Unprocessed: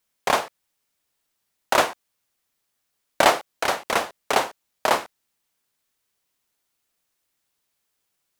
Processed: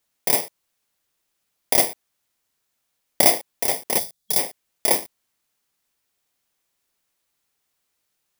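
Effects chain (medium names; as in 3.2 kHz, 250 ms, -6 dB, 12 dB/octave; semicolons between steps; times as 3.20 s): bit-reversed sample order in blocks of 32 samples; time-frequency box 3.99–4.38 s, 200–3300 Hz -10 dB; trim +1 dB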